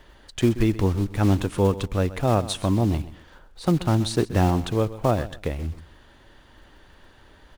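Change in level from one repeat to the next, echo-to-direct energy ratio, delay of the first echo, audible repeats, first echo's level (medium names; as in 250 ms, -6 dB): -12.5 dB, -16.0 dB, 129 ms, 2, -16.0 dB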